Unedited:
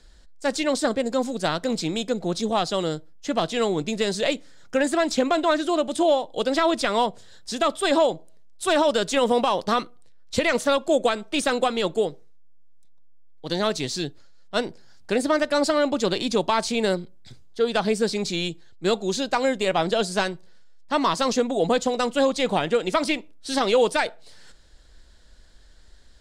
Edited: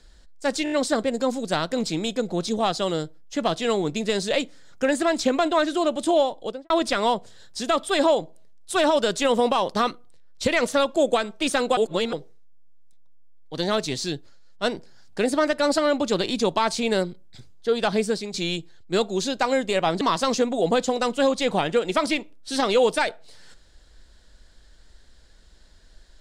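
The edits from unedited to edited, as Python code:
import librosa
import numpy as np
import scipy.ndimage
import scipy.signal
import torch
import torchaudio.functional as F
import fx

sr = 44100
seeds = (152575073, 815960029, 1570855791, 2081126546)

y = fx.studio_fade_out(x, sr, start_s=6.24, length_s=0.38)
y = fx.edit(y, sr, fx.stutter(start_s=0.64, slice_s=0.02, count=5),
    fx.reverse_span(start_s=11.69, length_s=0.36),
    fx.fade_out_to(start_s=17.95, length_s=0.31, floor_db=-10.5),
    fx.cut(start_s=19.93, length_s=1.06), tone=tone)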